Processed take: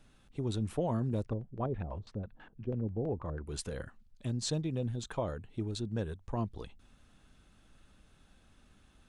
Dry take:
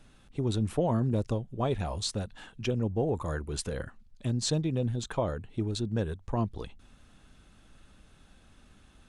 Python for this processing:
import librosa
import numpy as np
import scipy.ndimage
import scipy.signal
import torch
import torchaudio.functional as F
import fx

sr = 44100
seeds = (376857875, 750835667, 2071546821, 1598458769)

y = fx.filter_lfo_lowpass(x, sr, shape='square', hz=6.1, low_hz=440.0, high_hz=1900.0, q=0.78, at=(1.25, 3.47))
y = y * librosa.db_to_amplitude(-5.0)